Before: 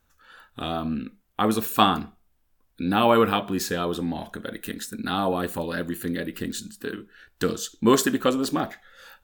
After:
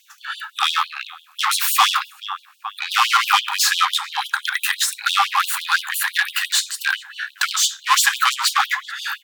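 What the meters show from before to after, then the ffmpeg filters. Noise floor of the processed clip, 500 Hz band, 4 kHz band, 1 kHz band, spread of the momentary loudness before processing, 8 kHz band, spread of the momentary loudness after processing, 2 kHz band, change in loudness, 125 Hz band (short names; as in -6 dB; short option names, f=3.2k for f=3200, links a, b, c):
-53 dBFS, under -30 dB, +13.0 dB, +6.5 dB, 15 LU, +13.0 dB, 14 LU, +14.0 dB, +7.0 dB, under -40 dB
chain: -filter_complex "[0:a]asplit=2[a][b];[b]adelay=430,lowpass=f=2.3k:p=1,volume=-23dB,asplit=2[c][d];[d]adelay=430,lowpass=f=2.3k:p=1,volume=0.54,asplit=2[e][f];[f]adelay=430,lowpass=f=2.3k:p=1,volume=0.54,asplit=2[g][h];[h]adelay=430,lowpass=f=2.3k:p=1,volume=0.54[i];[a][c][e][g][i]amix=inputs=5:normalize=0,asplit=2[j][k];[k]highpass=f=720:p=1,volume=31dB,asoftclip=type=tanh:threshold=-3.5dB[l];[j][l]amix=inputs=2:normalize=0,lowpass=f=4.5k:p=1,volume=-6dB,afftfilt=real='re*gte(b*sr/1024,750*pow(2900/750,0.5+0.5*sin(2*PI*5.9*pts/sr)))':imag='im*gte(b*sr/1024,750*pow(2900/750,0.5+0.5*sin(2*PI*5.9*pts/sr)))':win_size=1024:overlap=0.75"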